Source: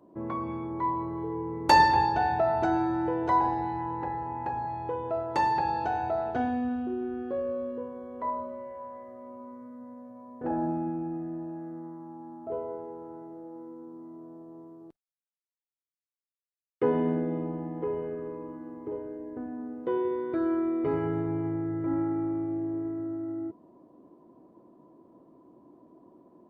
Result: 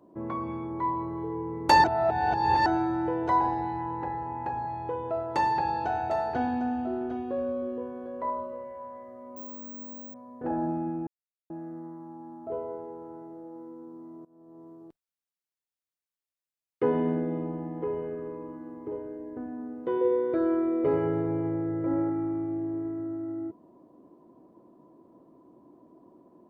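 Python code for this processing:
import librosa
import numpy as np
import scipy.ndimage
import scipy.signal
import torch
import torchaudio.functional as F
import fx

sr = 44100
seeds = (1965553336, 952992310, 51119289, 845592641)

y = fx.echo_single(x, sr, ms=752, db=-10.0, at=(5.14, 8.64))
y = fx.resample_bad(y, sr, factor=2, down='filtered', up='zero_stuff', at=(9.36, 10.14))
y = fx.peak_eq(y, sr, hz=520.0, db=14.0, octaves=0.36, at=(20.01, 22.1))
y = fx.edit(y, sr, fx.reverse_span(start_s=1.84, length_s=0.82),
    fx.silence(start_s=11.07, length_s=0.43),
    fx.fade_in_from(start_s=14.25, length_s=0.44, floor_db=-23.0), tone=tone)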